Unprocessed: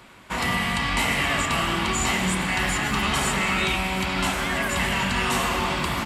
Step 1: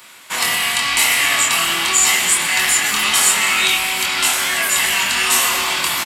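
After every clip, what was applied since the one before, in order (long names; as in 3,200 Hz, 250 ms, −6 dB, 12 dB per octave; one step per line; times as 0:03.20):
spectral tilt +4.5 dB per octave
double-tracking delay 24 ms −4 dB
level +1.5 dB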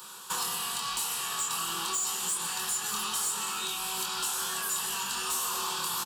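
downward compressor 6 to 1, threshold −26 dBFS, peak gain reduction 15 dB
phaser with its sweep stopped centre 420 Hz, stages 8
hard clipping −25.5 dBFS, distortion −17 dB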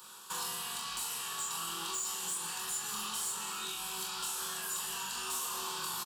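double-tracking delay 42 ms −4.5 dB
level −7 dB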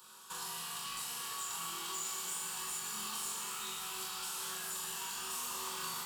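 reverb with rising layers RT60 3.7 s, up +12 semitones, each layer −8 dB, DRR 1 dB
level −5.5 dB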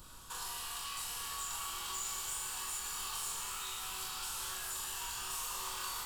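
high-pass filter 430 Hz 24 dB per octave
background noise brown −55 dBFS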